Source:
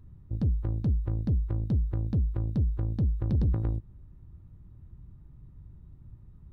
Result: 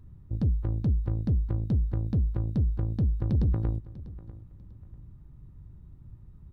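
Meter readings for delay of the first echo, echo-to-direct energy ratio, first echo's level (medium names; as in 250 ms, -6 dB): 645 ms, -17.5 dB, -18.0 dB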